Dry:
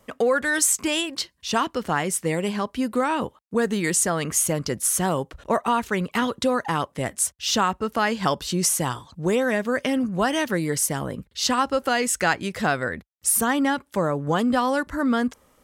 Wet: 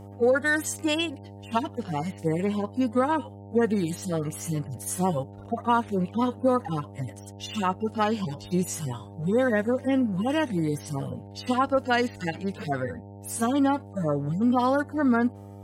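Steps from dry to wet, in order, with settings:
harmonic-percussive split with one part muted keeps harmonic
hum with harmonics 100 Hz, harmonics 9, −43 dBFS −5 dB per octave

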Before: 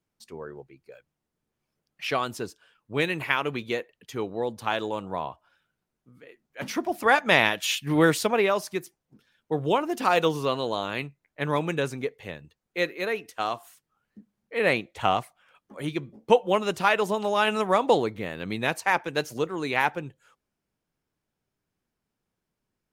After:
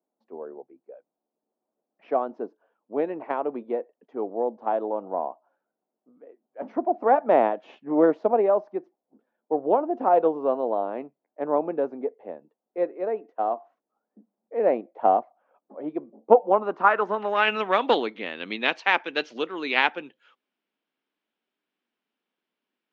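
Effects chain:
harmonic generator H 2 −9 dB, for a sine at −4 dBFS
elliptic band-pass filter 240–6,200 Hz, stop band 40 dB
low-pass filter sweep 700 Hz → 3,200 Hz, 0:16.38–0:17.74
level −1 dB

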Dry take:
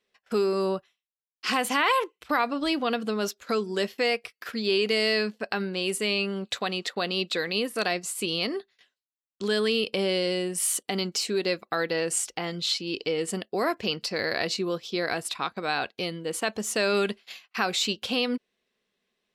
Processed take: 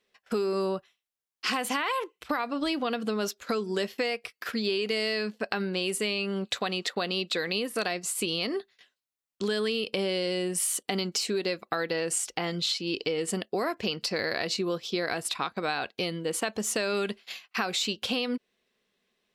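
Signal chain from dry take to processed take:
downward compressor, threshold −28 dBFS, peak gain reduction 9.5 dB
level +2.5 dB

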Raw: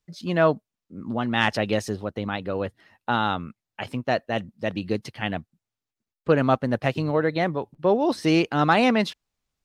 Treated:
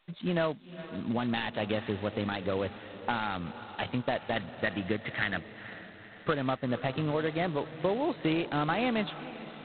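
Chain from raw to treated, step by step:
high-pass filter 56 Hz 12 dB per octave
0:04.36–0:06.34: flat-topped bell 1,600 Hz +11.5 dB 1 octave
downward compressor 6 to 1, threshold −26 dBFS, peak gain reduction 13.5 dB
feedback delay with all-pass diffusion 468 ms, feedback 55%, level −14.5 dB
G.726 16 kbit/s 8,000 Hz

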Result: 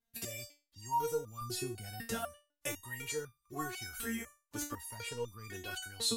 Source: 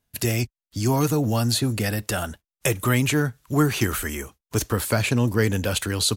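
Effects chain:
0:01.41–0:02.14: low-shelf EQ 230 Hz +7.5 dB
step-sequenced resonator 4 Hz 230–1,200 Hz
level +2.5 dB

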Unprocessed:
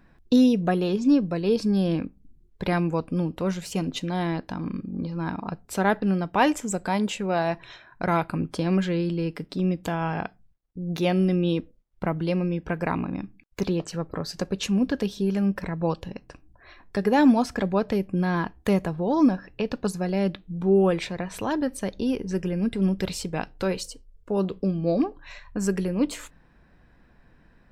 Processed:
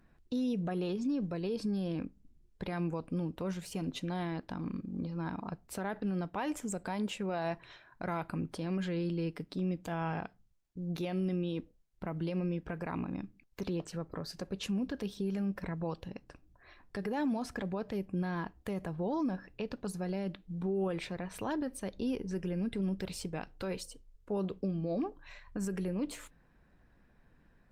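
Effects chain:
0:23.76–0:25.99: dynamic equaliser 4,700 Hz, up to −4 dB, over −58 dBFS, Q 6.6
brickwall limiter −19.5 dBFS, peak gain reduction 11 dB
level −7 dB
Opus 32 kbit/s 48,000 Hz

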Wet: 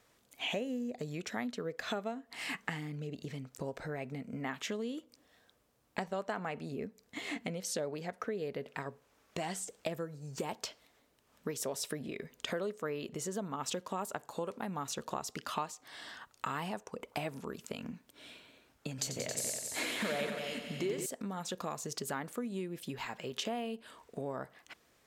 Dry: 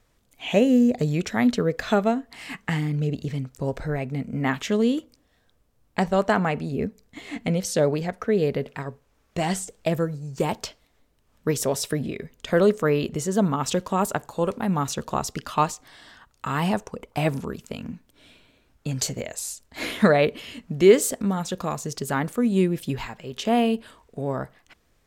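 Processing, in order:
downward compressor 5 to 1, threshold −35 dBFS, peak gain reduction 23 dB
high-pass filter 300 Hz 6 dB per octave
0:18.89–0:21.06: echo machine with several playback heads 91 ms, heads all three, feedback 43%, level −9 dB
level +1 dB

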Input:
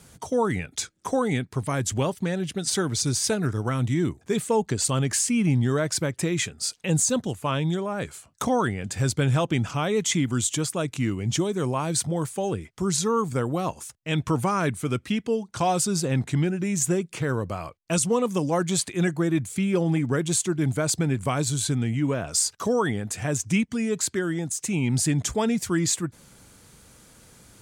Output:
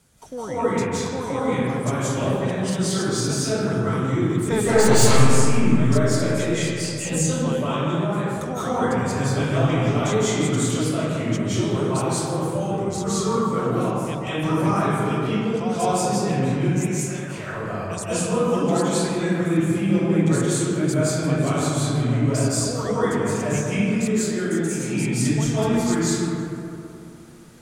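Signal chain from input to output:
0:04.41–0:04.95: sine wavefolder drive 4 dB → 10 dB, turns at −12.5 dBFS
0:16.65–0:17.38: elliptic high-pass filter 600 Hz
convolution reverb RT60 2.8 s, pre-delay 133 ms, DRR −12 dB
feedback echo with a swinging delay time 163 ms, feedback 45%, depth 142 cents, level −17 dB
level −9.5 dB

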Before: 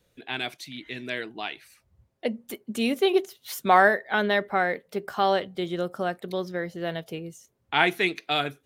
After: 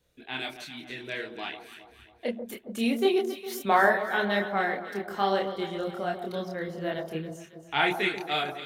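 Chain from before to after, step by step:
multi-voice chorus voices 6, 1.2 Hz, delay 28 ms, depth 3 ms
delay that swaps between a low-pass and a high-pass 137 ms, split 1,100 Hz, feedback 67%, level −8 dB

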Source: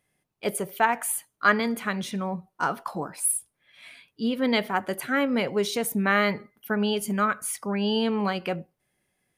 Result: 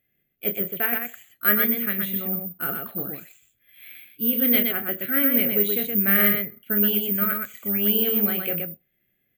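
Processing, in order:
phaser with its sweep stopped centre 2,300 Hz, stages 4
on a send: loudspeakers that aren't time-aligned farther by 10 metres −8 dB, 42 metres −4 dB
on the sum: bad sample-rate conversion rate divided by 3×, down filtered, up zero stuff
level −1 dB

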